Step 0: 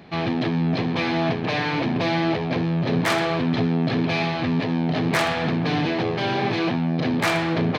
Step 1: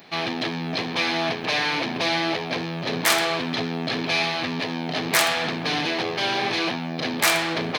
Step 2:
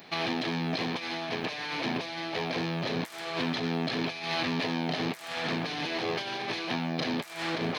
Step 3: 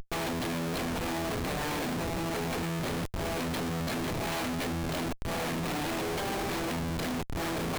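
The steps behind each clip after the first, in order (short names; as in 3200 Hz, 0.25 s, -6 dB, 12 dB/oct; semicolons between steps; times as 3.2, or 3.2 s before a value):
RIAA curve recording
negative-ratio compressor -27 dBFS, ratio -0.5; gain -4.5 dB
Schmitt trigger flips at -33.5 dBFS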